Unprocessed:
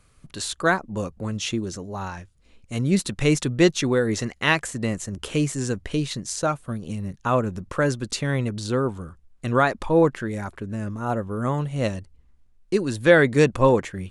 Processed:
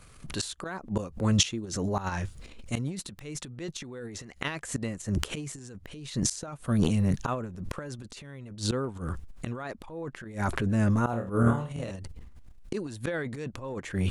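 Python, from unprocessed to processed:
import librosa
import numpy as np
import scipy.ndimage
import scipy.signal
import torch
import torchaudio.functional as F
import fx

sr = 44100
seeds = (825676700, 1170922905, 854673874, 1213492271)

y = fx.gate_flip(x, sr, shuts_db=-19.0, range_db=-25)
y = fx.room_flutter(y, sr, wall_m=4.4, rt60_s=0.33, at=(11.1, 11.91))
y = fx.transient(y, sr, attack_db=-4, sustain_db=12)
y = y * 10.0 ** (5.0 / 20.0)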